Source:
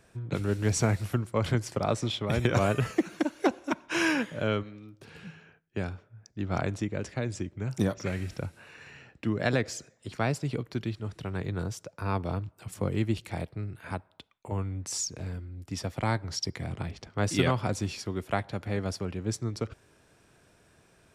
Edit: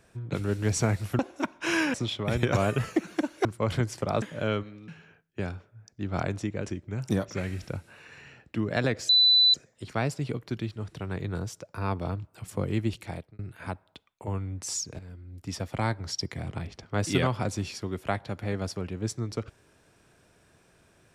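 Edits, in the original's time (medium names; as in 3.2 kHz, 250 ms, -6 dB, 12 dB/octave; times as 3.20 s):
1.19–1.96 s: swap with 3.47–4.22 s
4.88–5.26 s: delete
7.08–7.39 s: delete
9.78 s: add tone 3.99 kHz -16 dBFS 0.45 s
13.14–13.63 s: fade out equal-power
15.23–15.70 s: fade in, from -12 dB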